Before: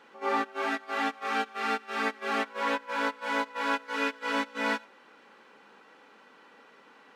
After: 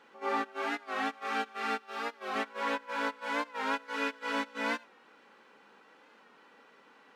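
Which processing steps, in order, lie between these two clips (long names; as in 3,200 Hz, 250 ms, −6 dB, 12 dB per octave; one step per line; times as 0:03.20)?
0:01.79–0:02.36: octave-band graphic EQ 250/2,000/8,000 Hz −8/−6/−4 dB
wow of a warped record 45 rpm, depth 100 cents
level −3.5 dB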